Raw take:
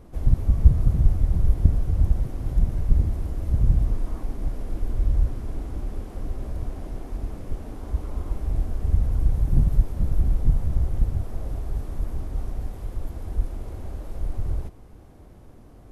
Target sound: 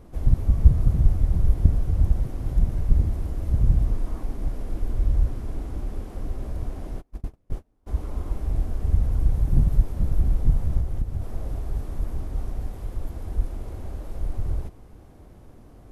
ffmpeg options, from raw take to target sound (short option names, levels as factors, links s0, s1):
-filter_complex "[0:a]asplit=3[s0][s1][s2];[s0]afade=t=out:st=7:d=0.02[s3];[s1]agate=range=0.0224:threshold=0.0501:ratio=16:detection=peak,afade=t=in:st=7:d=0.02,afade=t=out:st=7.86:d=0.02[s4];[s2]afade=t=in:st=7.86:d=0.02[s5];[s3][s4][s5]amix=inputs=3:normalize=0,asettb=1/sr,asplit=3[s6][s7][s8];[s6]atrim=end=10.804[s9];[s7]atrim=start=10.8:end=11.22,asetpts=PTS-STARTPTS,afade=t=in:d=0.004:c=qsin,afade=t=out:st=0.416:d=0.004:c=qsin,acompressor=threshold=0.0891:ratio=6[s10];[s8]atrim=start=11.216[s11];[s9][s10]acrossfade=d=0.004:c1=hsin:c2=qsin[s12];[s12][s11]acrossfade=d=0.004:c1=qsin:c2=hsin"